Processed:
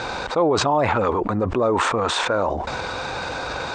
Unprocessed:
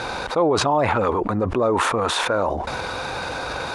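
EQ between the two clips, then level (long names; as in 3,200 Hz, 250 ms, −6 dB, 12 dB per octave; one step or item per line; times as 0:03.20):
linear-phase brick-wall low-pass 8,800 Hz
0.0 dB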